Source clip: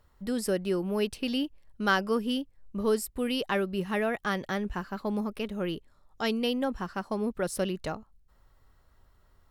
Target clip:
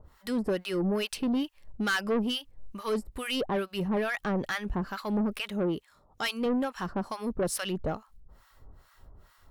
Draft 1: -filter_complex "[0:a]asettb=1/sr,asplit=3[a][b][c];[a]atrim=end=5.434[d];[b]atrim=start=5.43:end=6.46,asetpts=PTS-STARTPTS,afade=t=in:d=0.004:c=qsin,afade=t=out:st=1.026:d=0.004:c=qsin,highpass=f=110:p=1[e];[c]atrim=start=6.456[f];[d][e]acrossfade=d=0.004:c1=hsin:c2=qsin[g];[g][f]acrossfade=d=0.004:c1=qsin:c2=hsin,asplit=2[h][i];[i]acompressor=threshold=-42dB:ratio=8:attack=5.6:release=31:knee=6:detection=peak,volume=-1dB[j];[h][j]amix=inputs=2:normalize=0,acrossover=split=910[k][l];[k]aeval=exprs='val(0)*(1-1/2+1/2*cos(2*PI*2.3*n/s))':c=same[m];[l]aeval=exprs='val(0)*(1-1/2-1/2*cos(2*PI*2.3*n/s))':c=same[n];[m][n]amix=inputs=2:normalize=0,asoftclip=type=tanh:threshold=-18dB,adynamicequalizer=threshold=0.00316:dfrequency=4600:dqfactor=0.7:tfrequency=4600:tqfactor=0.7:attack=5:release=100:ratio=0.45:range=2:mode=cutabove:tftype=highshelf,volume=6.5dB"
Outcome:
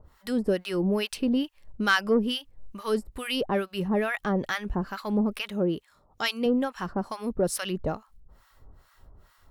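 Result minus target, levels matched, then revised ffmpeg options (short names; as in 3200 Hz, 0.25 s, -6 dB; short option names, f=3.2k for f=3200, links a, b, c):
soft clip: distortion -13 dB
-filter_complex "[0:a]asettb=1/sr,asplit=3[a][b][c];[a]atrim=end=5.434[d];[b]atrim=start=5.43:end=6.46,asetpts=PTS-STARTPTS,afade=t=in:d=0.004:c=qsin,afade=t=out:st=1.026:d=0.004:c=qsin,highpass=f=110:p=1[e];[c]atrim=start=6.456[f];[d][e]acrossfade=d=0.004:c1=hsin:c2=qsin[g];[g][f]acrossfade=d=0.004:c1=qsin:c2=hsin,asplit=2[h][i];[i]acompressor=threshold=-42dB:ratio=8:attack=5.6:release=31:knee=6:detection=peak,volume=-1dB[j];[h][j]amix=inputs=2:normalize=0,acrossover=split=910[k][l];[k]aeval=exprs='val(0)*(1-1/2+1/2*cos(2*PI*2.3*n/s))':c=same[m];[l]aeval=exprs='val(0)*(1-1/2-1/2*cos(2*PI*2.3*n/s))':c=same[n];[m][n]amix=inputs=2:normalize=0,asoftclip=type=tanh:threshold=-29.5dB,adynamicequalizer=threshold=0.00316:dfrequency=4600:dqfactor=0.7:tfrequency=4600:tqfactor=0.7:attack=5:release=100:ratio=0.45:range=2:mode=cutabove:tftype=highshelf,volume=6.5dB"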